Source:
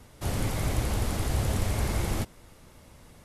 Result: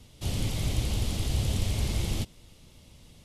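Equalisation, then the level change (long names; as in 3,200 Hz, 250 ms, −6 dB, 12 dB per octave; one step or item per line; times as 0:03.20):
drawn EQ curve 160 Hz 0 dB, 1,600 Hz −11 dB, 3,100 Hz +5 dB, 13,000 Hz −4 dB
0.0 dB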